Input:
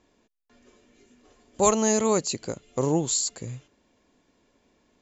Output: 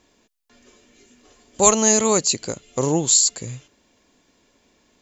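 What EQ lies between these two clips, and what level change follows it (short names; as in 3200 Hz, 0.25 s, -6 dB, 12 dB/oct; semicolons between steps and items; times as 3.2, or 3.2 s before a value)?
high shelf 2300 Hz +8 dB; +3.0 dB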